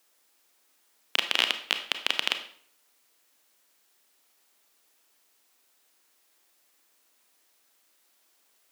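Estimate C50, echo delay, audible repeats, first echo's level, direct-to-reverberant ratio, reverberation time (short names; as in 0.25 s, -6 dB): 10.0 dB, none, none, none, 7.5 dB, 0.55 s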